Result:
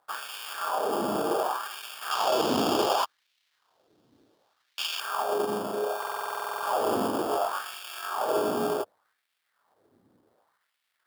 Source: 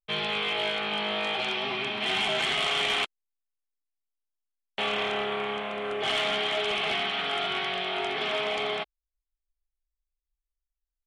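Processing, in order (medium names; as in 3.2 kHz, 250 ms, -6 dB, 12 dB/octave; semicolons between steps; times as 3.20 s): tracing distortion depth 0.19 ms; added noise brown -56 dBFS; sample-and-hold 22×; fifteen-band graphic EQ 100 Hz +10 dB, 2.5 kHz -10 dB, 6.3 kHz -7 dB; LFO high-pass sine 0.67 Hz 250–2500 Hz; 2.11–5.00 s: high-order bell 4.1 kHz +8.5 dB; buffer glitch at 5.98 s, samples 2048, times 13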